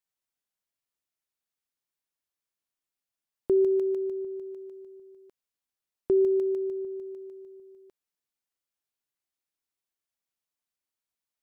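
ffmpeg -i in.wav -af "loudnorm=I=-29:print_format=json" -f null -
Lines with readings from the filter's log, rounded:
"input_i" : "-27.2",
"input_tp" : "-17.4",
"input_lra" : "0.9",
"input_thresh" : "-39.8",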